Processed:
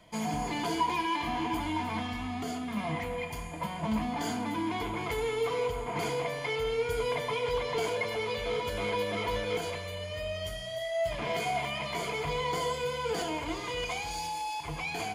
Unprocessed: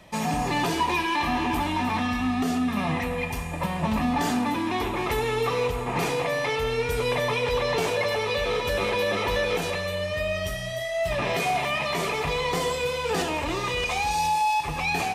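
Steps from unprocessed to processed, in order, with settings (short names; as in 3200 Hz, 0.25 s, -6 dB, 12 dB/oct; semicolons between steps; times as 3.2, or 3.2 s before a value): ripple EQ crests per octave 1.8, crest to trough 11 dB; gain -8 dB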